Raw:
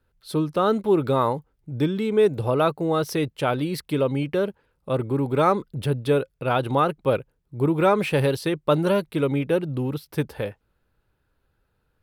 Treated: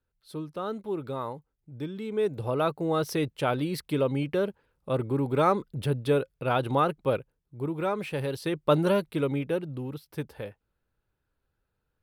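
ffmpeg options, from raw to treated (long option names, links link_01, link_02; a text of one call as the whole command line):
ffmpeg -i in.wav -af "volume=4.5dB,afade=type=in:start_time=1.86:duration=1.17:silence=0.354813,afade=type=out:start_time=6.94:duration=0.65:silence=0.473151,afade=type=in:start_time=8.26:duration=0.46:silence=0.398107,afade=type=out:start_time=8.72:duration=1.09:silence=0.446684" out.wav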